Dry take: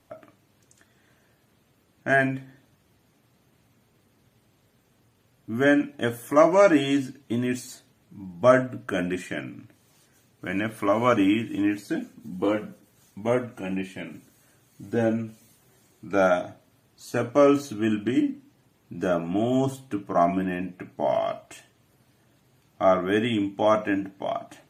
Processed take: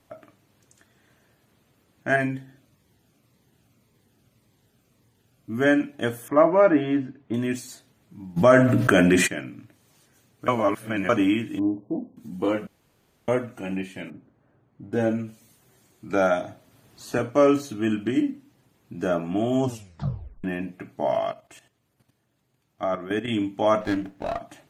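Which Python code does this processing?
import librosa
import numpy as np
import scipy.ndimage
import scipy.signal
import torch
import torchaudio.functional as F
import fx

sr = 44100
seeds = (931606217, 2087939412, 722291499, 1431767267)

y = fx.notch_cascade(x, sr, direction='falling', hz=1.8, at=(2.16, 5.58))
y = fx.lowpass(y, sr, hz=1800.0, slope=12, at=(6.28, 7.34))
y = fx.env_flatten(y, sr, amount_pct=70, at=(8.36, 9.26), fade=0.02)
y = fx.brickwall_lowpass(y, sr, high_hz=1100.0, at=(11.59, 12.17))
y = fx.lowpass(y, sr, hz=1100.0, slope=12, at=(14.1, 14.93))
y = fx.band_squash(y, sr, depth_pct=40, at=(16.09, 17.19))
y = fx.level_steps(y, sr, step_db=12, at=(21.31, 23.28))
y = fx.running_max(y, sr, window=9, at=(23.8, 24.38), fade=0.02)
y = fx.edit(y, sr, fx.reverse_span(start_s=10.48, length_s=0.61),
    fx.room_tone_fill(start_s=12.67, length_s=0.61),
    fx.tape_stop(start_s=19.63, length_s=0.81), tone=tone)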